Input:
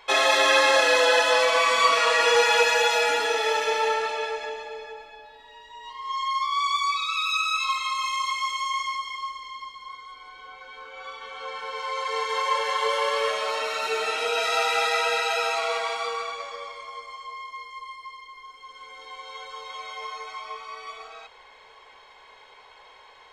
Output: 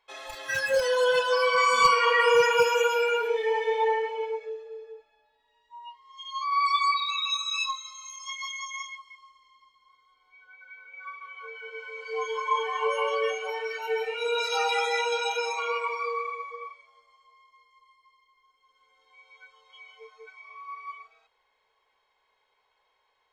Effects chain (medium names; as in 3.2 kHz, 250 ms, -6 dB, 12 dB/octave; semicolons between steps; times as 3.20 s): wavefolder -11 dBFS; spectral noise reduction 23 dB; trim +1.5 dB